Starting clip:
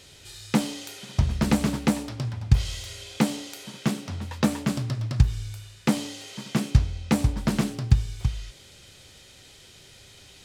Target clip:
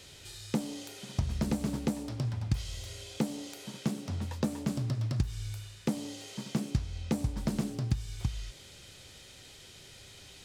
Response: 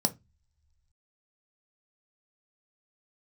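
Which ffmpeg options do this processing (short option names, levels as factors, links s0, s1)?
-filter_complex "[0:a]acrossover=split=800|4300[s0][s1][s2];[s0]acompressor=threshold=0.0501:ratio=4[s3];[s1]acompressor=threshold=0.00355:ratio=4[s4];[s2]acompressor=threshold=0.00501:ratio=4[s5];[s3][s4][s5]amix=inputs=3:normalize=0,volume=0.841"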